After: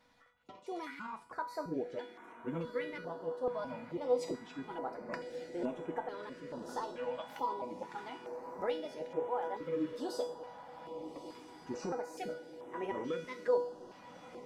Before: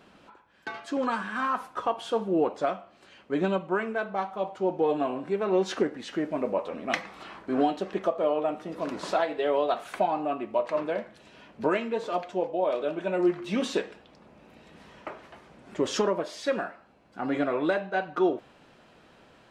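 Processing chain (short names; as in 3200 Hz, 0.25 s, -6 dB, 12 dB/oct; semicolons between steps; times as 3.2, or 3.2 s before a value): trilling pitch shifter -7.5 st, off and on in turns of 0.447 s; low shelf 490 Hz +5 dB; resonator 360 Hz, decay 0.7 s, mix 90%; diffused feedback echo 1.677 s, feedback 66%, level -11 dB; speed mistake 33 rpm record played at 45 rpm; stepped notch 2.3 Hz 380–4600 Hz; gain +4 dB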